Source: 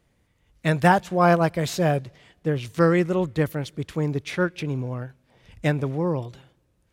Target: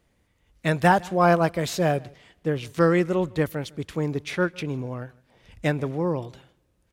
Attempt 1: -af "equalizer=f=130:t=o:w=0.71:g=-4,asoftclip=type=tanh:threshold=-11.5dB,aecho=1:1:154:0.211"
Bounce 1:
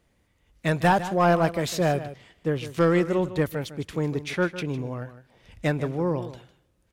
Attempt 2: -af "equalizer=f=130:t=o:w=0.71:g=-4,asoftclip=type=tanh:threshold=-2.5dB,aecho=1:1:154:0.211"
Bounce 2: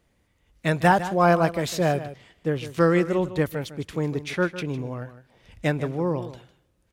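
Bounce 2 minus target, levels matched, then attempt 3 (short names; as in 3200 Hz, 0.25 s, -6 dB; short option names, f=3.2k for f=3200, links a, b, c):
echo-to-direct +11.5 dB
-af "equalizer=f=130:t=o:w=0.71:g=-4,asoftclip=type=tanh:threshold=-2.5dB,aecho=1:1:154:0.0562"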